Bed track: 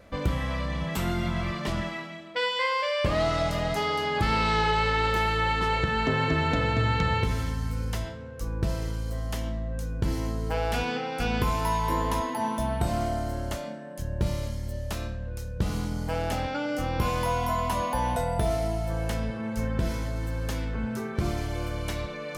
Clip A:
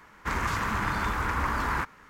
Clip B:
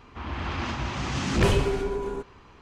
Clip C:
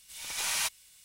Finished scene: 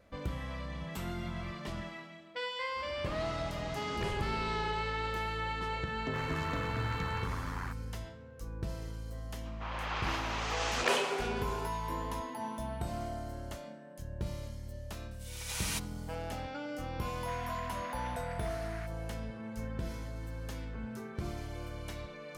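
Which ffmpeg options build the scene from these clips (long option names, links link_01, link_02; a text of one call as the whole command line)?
ffmpeg -i bed.wav -i cue0.wav -i cue1.wav -i cue2.wav -filter_complex "[2:a]asplit=2[link_01][link_02];[1:a]asplit=2[link_03][link_04];[0:a]volume=-10.5dB[link_05];[link_03]tremolo=f=89:d=0.857[link_06];[link_02]highpass=frequency=490:width=0.5412,highpass=frequency=490:width=1.3066[link_07];[link_04]asuperpass=centerf=2900:order=4:qfactor=0.87[link_08];[link_01]atrim=end=2.61,asetpts=PTS-STARTPTS,volume=-16dB,afade=type=in:duration=0.004:curve=hsin,afade=type=out:start_time=2.606:duration=0.004:curve=hsin,adelay=2600[link_09];[link_06]atrim=end=2.09,asetpts=PTS-STARTPTS,volume=-10dB,afade=type=in:duration=0.004:curve=hsin,afade=type=out:start_time=2.086:duration=0.004:curve=hsin,adelay=5880[link_10];[link_07]atrim=end=2.61,asetpts=PTS-STARTPTS,volume=-2dB,afade=type=in:duration=0.004:curve=hsin,afade=type=out:start_time=2.606:duration=0.004:curve=hsin,adelay=9450[link_11];[3:a]atrim=end=1.04,asetpts=PTS-STARTPTS,volume=-6.5dB,afade=type=in:duration=0.004:curve=hsin,afade=type=out:start_time=1.036:duration=0.004:curve=hsin,adelay=15110[link_12];[link_08]atrim=end=2.09,asetpts=PTS-STARTPTS,volume=-13.5dB,afade=type=in:duration=0.004:curve=hsin,afade=type=out:start_time=2.086:duration=0.004:curve=hsin,adelay=17020[link_13];[link_05][link_09][link_10][link_11][link_12][link_13]amix=inputs=6:normalize=0" out.wav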